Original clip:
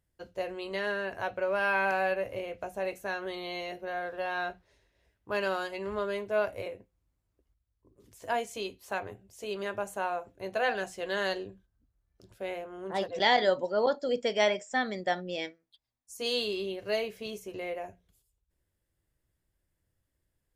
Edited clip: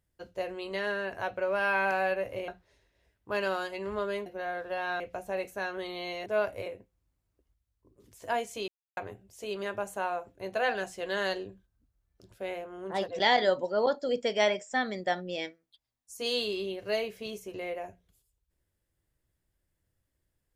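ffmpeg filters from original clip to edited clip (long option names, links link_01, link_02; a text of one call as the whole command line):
ffmpeg -i in.wav -filter_complex "[0:a]asplit=7[link_01][link_02][link_03][link_04][link_05][link_06][link_07];[link_01]atrim=end=2.482[link_08];[link_02]atrim=start=4.478:end=6.262[link_09];[link_03]atrim=start=3.738:end=4.482[link_10];[link_04]atrim=start=2.478:end=3.742[link_11];[link_05]atrim=start=6.258:end=8.68,asetpts=PTS-STARTPTS,afade=type=out:start_time=2.418:duration=0.004:curve=hsin[link_12];[link_06]atrim=start=8.68:end=8.97,asetpts=PTS-STARTPTS,volume=0[link_13];[link_07]atrim=start=8.97,asetpts=PTS-STARTPTS,afade=type=in:duration=0.004:curve=hsin[link_14];[link_08][link_09]acrossfade=duration=0.004:curve1=hsin:curve2=hsin[link_15];[link_15][link_10]acrossfade=duration=0.004:curve1=hsin:curve2=hsin[link_16];[link_16][link_11]acrossfade=duration=0.004:curve1=hsin:curve2=hsin[link_17];[link_12][link_13][link_14]concat=n=3:v=0:a=1[link_18];[link_17][link_18]acrossfade=duration=0.004:curve1=hsin:curve2=hsin" out.wav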